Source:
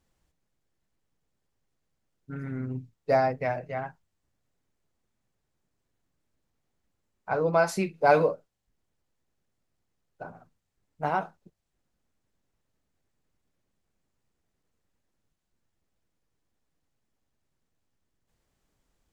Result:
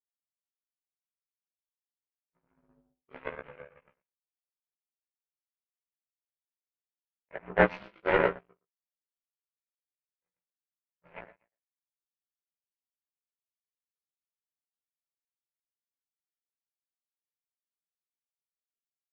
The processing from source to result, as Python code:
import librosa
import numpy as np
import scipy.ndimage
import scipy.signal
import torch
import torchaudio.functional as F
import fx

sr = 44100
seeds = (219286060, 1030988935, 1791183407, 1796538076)

p1 = fx.partial_stretch(x, sr, pct=76)
p2 = fx.high_shelf(p1, sr, hz=3500.0, db=-8.0)
p3 = p2 + fx.echo_feedback(p2, sr, ms=118, feedback_pct=39, wet_db=-3.0, dry=0)
p4 = fx.chorus_voices(p3, sr, voices=4, hz=0.51, base_ms=23, depth_ms=1.2, mix_pct=65)
p5 = 10.0 ** (-18.0 / 20.0) * np.tanh(p4 / 10.0 ** (-18.0 / 20.0))
p6 = p4 + F.gain(torch.from_numpy(p5), -7.0).numpy()
p7 = fx.power_curve(p6, sr, exponent=3.0)
p8 = fx.peak_eq(p7, sr, hz=2600.0, db=11.0, octaves=1.1)
p9 = fx.doubler(p8, sr, ms=16.0, db=-3.5)
y = F.gain(torch.from_numpy(p9), 2.5).numpy()